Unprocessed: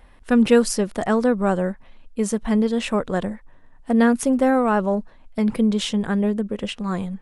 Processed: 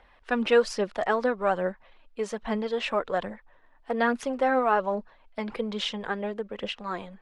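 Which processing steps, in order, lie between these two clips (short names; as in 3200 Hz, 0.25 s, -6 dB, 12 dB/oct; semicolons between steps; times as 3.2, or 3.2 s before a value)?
phaser 1.2 Hz, delay 3.7 ms, feedback 37%; three-band isolator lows -14 dB, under 420 Hz, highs -23 dB, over 5200 Hz; gain -2 dB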